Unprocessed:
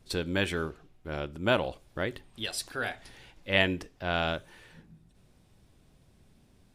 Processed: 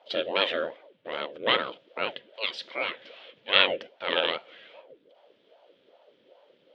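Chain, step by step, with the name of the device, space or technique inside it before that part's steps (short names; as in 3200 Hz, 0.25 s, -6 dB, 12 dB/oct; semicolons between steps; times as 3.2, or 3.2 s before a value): voice changer toy (ring modulator with a swept carrier 450 Hz, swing 75%, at 2.5 Hz; speaker cabinet 440–3800 Hz, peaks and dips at 530 Hz +9 dB, 800 Hz -8 dB, 1100 Hz -6 dB, 3200 Hz +9 dB); gain +6 dB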